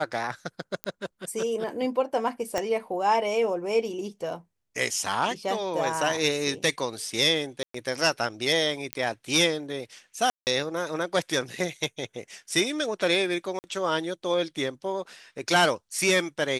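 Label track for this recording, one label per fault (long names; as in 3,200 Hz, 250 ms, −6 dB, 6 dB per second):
0.840000	0.840000	click −14 dBFS
2.580000	2.580000	click −13 dBFS
7.630000	7.740000	drop-out 114 ms
8.930000	8.930000	click −12 dBFS
10.300000	10.470000	drop-out 169 ms
13.590000	13.640000	drop-out 49 ms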